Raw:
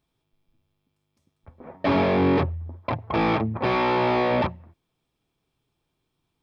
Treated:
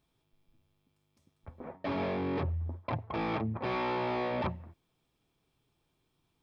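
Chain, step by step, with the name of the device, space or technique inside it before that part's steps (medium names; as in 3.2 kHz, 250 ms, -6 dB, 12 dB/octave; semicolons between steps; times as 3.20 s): compression on the reversed sound (reverse; compression 12:1, threshold -30 dBFS, peak gain reduction 14 dB; reverse)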